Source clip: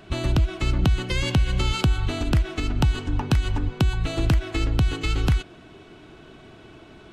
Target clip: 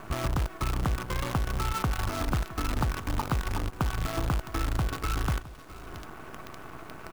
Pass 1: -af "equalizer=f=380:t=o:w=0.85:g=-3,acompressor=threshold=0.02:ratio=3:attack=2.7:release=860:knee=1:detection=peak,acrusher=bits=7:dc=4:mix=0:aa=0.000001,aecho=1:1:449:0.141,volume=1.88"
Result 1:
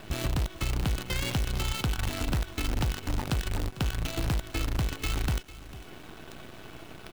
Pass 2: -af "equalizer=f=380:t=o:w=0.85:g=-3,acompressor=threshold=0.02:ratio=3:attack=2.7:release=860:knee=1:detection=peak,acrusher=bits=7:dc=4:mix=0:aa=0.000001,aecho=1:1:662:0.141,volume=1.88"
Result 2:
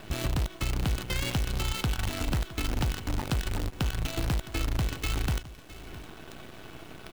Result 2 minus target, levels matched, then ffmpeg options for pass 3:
1 kHz band -6.0 dB
-af "equalizer=f=380:t=o:w=0.85:g=-3,acompressor=threshold=0.02:ratio=3:attack=2.7:release=860:knee=1:detection=peak,lowpass=f=1200:t=q:w=3.4,acrusher=bits=7:dc=4:mix=0:aa=0.000001,aecho=1:1:662:0.141,volume=1.88"

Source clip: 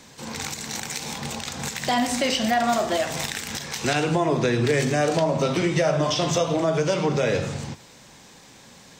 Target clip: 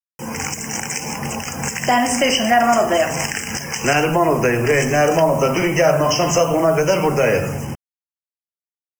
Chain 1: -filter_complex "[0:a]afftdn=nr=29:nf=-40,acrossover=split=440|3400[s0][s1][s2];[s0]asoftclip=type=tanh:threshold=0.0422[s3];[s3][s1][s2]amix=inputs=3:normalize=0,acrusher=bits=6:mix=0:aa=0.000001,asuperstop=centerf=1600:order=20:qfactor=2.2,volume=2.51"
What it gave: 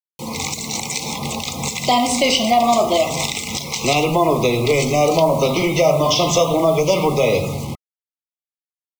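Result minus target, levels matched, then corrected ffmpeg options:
2 kHz band -4.5 dB
-filter_complex "[0:a]afftdn=nr=29:nf=-40,acrossover=split=440|3400[s0][s1][s2];[s0]asoftclip=type=tanh:threshold=0.0422[s3];[s3][s1][s2]amix=inputs=3:normalize=0,acrusher=bits=6:mix=0:aa=0.000001,asuperstop=centerf=3900:order=20:qfactor=2.2,volume=2.51"

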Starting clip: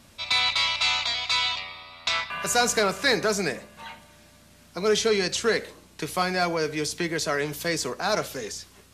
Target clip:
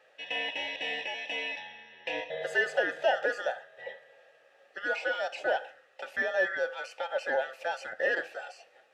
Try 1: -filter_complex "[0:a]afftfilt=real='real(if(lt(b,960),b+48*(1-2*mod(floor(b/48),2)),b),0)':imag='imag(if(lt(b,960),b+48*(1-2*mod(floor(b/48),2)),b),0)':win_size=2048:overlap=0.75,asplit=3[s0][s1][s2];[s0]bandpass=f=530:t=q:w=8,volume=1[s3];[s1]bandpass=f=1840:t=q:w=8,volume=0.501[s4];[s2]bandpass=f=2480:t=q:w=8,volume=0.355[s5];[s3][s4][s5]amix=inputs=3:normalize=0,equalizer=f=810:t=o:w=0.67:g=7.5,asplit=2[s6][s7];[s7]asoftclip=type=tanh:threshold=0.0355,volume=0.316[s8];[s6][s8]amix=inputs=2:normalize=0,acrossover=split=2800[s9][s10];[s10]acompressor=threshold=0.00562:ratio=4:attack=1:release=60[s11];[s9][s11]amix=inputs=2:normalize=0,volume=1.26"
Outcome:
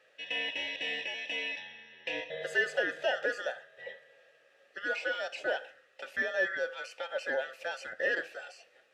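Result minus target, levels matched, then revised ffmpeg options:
1 kHz band -4.5 dB
-filter_complex "[0:a]afftfilt=real='real(if(lt(b,960),b+48*(1-2*mod(floor(b/48),2)),b),0)':imag='imag(if(lt(b,960),b+48*(1-2*mod(floor(b/48),2)),b),0)':win_size=2048:overlap=0.75,asplit=3[s0][s1][s2];[s0]bandpass=f=530:t=q:w=8,volume=1[s3];[s1]bandpass=f=1840:t=q:w=8,volume=0.501[s4];[s2]bandpass=f=2480:t=q:w=8,volume=0.355[s5];[s3][s4][s5]amix=inputs=3:normalize=0,equalizer=f=810:t=o:w=0.67:g=18,asplit=2[s6][s7];[s7]asoftclip=type=tanh:threshold=0.0355,volume=0.316[s8];[s6][s8]amix=inputs=2:normalize=0,acrossover=split=2800[s9][s10];[s10]acompressor=threshold=0.00562:ratio=4:attack=1:release=60[s11];[s9][s11]amix=inputs=2:normalize=0,volume=1.26"

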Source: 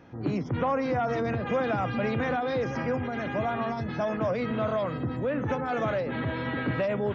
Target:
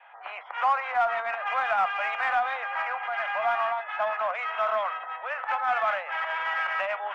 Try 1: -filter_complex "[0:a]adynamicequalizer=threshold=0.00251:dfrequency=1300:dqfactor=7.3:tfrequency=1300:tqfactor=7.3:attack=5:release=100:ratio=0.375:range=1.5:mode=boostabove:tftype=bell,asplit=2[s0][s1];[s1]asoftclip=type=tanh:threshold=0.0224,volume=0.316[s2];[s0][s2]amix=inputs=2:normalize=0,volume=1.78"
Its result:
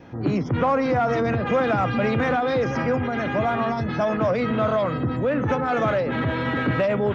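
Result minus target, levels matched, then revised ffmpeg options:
2 kHz band -5.5 dB
-filter_complex "[0:a]adynamicequalizer=threshold=0.00251:dfrequency=1300:dqfactor=7.3:tfrequency=1300:tqfactor=7.3:attack=5:release=100:ratio=0.375:range=1.5:mode=boostabove:tftype=bell,asuperpass=centerf=1500:order=12:qfactor=0.6,asplit=2[s0][s1];[s1]asoftclip=type=tanh:threshold=0.0224,volume=0.316[s2];[s0][s2]amix=inputs=2:normalize=0,volume=1.78"

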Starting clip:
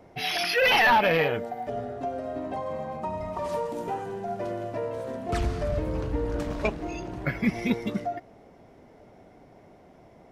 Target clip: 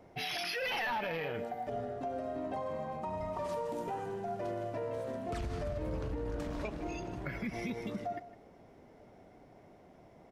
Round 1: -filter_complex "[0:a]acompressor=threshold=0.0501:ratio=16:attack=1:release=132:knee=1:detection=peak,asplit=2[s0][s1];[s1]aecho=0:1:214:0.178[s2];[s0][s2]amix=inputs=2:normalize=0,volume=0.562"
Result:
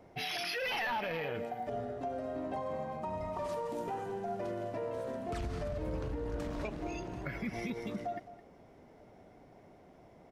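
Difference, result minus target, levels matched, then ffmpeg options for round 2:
echo 58 ms late
-filter_complex "[0:a]acompressor=threshold=0.0501:ratio=16:attack=1:release=132:knee=1:detection=peak,asplit=2[s0][s1];[s1]aecho=0:1:156:0.178[s2];[s0][s2]amix=inputs=2:normalize=0,volume=0.562"

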